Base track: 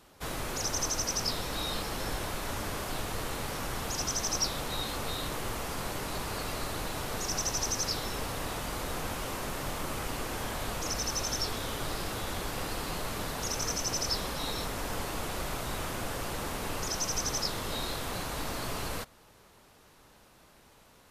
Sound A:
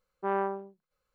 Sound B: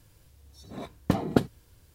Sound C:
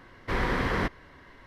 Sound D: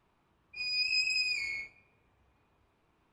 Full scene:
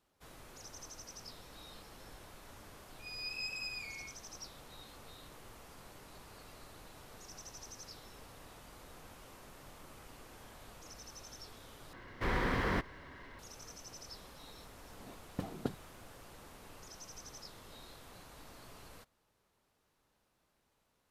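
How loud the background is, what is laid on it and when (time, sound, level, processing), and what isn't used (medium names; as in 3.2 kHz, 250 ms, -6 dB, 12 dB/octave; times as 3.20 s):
base track -19 dB
2.46 s: add D -11 dB
11.93 s: replace with C -6.5 dB + companding laws mixed up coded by mu
14.29 s: add B -15 dB
not used: A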